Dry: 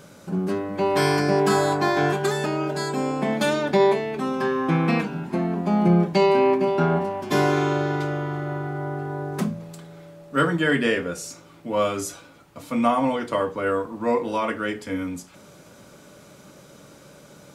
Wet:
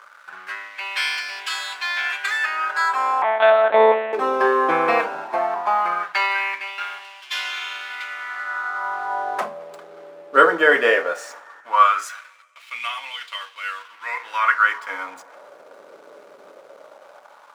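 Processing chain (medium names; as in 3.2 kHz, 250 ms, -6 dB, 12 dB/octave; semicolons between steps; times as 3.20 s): peaking EQ 1.3 kHz +14 dB 2.6 oct; hysteresis with a dead band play -34.5 dBFS; 3.22–4.13 s: monotone LPC vocoder at 8 kHz 220 Hz; plate-style reverb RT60 2.7 s, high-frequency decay 0.55×, DRR 19.5 dB; LFO high-pass sine 0.17 Hz 440–3000 Hz; trim -5 dB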